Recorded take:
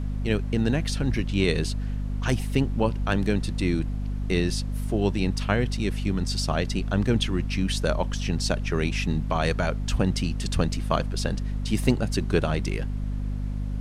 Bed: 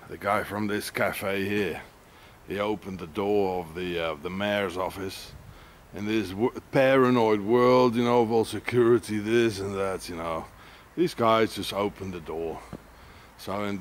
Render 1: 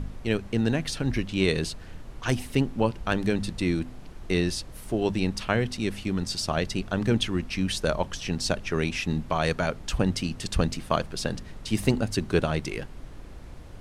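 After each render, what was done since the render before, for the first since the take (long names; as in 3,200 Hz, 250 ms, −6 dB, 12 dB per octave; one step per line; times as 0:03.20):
hum removal 50 Hz, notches 5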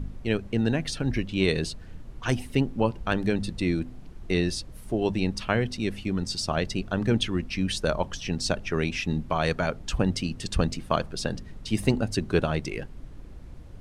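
broadband denoise 7 dB, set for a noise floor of −43 dBFS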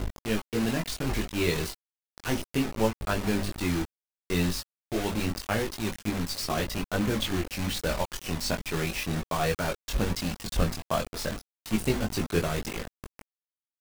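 bit reduction 5 bits
multi-voice chorus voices 6, 0.3 Hz, delay 21 ms, depth 2.8 ms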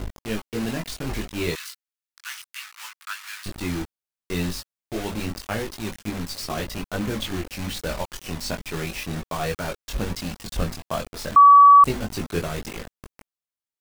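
0:01.55–0:03.46: Butterworth high-pass 1,200 Hz
0:11.36–0:11.84: beep over 1,140 Hz −7 dBFS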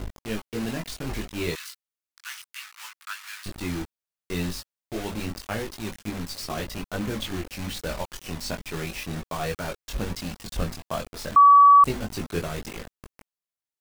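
level −2.5 dB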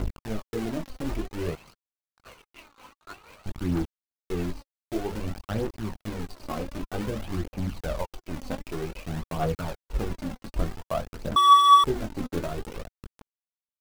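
running median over 25 samples
phase shifter 0.53 Hz, delay 4 ms, feedback 46%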